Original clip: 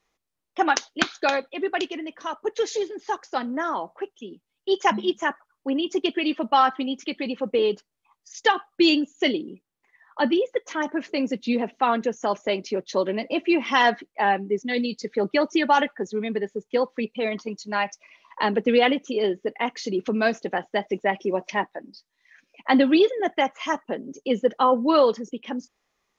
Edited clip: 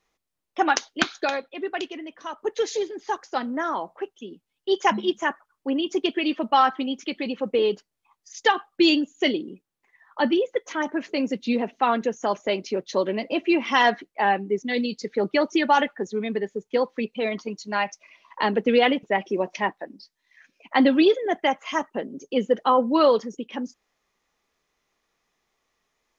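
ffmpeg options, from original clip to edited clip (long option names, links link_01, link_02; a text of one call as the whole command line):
ffmpeg -i in.wav -filter_complex "[0:a]asplit=4[link_01][link_02][link_03][link_04];[link_01]atrim=end=1.252[link_05];[link_02]atrim=start=1.248:end=2.382,asetpts=PTS-STARTPTS,volume=-3.5dB[link_06];[link_03]atrim=start=2.378:end=19.032[link_07];[link_04]atrim=start=20.968[link_08];[link_05][link_06]acrossfade=duration=0.004:curve1=hsin:curve2=hsin[link_09];[link_09][link_07]acrossfade=duration=0.004:curve1=hsin:curve2=hsin[link_10];[link_10][link_08]acrossfade=duration=0.004:curve1=hsin:curve2=hsin" out.wav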